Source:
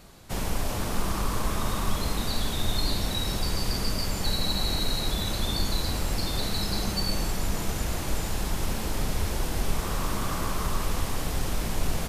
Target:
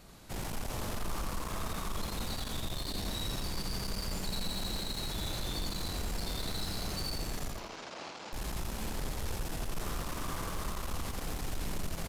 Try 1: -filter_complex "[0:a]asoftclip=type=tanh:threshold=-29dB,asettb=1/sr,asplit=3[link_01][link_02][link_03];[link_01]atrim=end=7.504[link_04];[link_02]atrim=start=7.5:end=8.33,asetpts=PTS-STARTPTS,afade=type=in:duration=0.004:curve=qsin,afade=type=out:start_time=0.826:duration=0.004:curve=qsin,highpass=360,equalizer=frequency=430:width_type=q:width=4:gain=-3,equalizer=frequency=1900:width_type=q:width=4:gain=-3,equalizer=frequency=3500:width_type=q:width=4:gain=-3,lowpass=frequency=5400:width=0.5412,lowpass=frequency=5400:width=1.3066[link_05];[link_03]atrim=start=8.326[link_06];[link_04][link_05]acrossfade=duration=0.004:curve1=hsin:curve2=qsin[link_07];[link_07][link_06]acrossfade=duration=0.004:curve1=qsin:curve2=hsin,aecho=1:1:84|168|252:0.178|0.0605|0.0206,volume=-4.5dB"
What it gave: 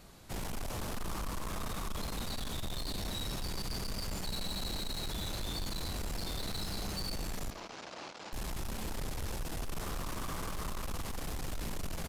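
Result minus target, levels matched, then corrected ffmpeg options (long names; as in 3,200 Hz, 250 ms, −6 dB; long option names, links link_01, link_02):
echo-to-direct −11.5 dB
-filter_complex "[0:a]asoftclip=type=tanh:threshold=-29dB,asettb=1/sr,asplit=3[link_01][link_02][link_03];[link_01]atrim=end=7.504[link_04];[link_02]atrim=start=7.5:end=8.33,asetpts=PTS-STARTPTS,afade=type=in:duration=0.004:curve=qsin,afade=type=out:start_time=0.826:duration=0.004:curve=qsin,highpass=360,equalizer=frequency=430:width_type=q:width=4:gain=-3,equalizer=frequency=1900:width_type=q:width=4:gain=-3,equalizer=frequency=3500:width_type=q:width=4:gain=-3,lowpass=frequency=5400:width=0.5412,lowpass=frequency=5400:width=1.3066[link_05];[link_03]atrim=start=8.326[link_06];[link_04][link_05]acrossfade=duration=0.004:curve1=hsin:curve2=qsin[link_07];[link_07][link_06]acrossfade=duration=0.004:curve1=qsin:curve2=hsin,aecho=1:1:84|168|252|336:0.668|0.227|0.0773|0.0263,volume=-4.5dB"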